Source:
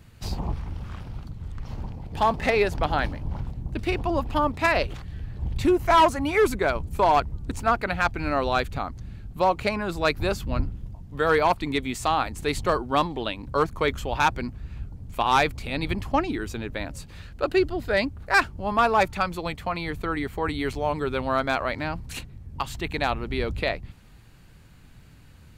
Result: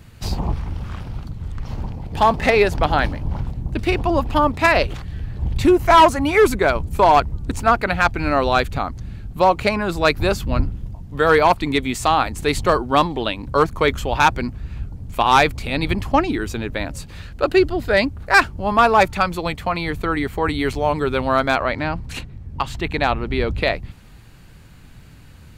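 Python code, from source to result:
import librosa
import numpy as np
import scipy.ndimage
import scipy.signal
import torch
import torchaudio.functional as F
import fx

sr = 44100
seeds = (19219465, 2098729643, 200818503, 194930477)

y = fx.high_shelf(x, sr, hz=6900.0, db=-10.5, at=(21.56, 23.62))
y = F.gain(torch.from_numpy(y), 6.5).numpy()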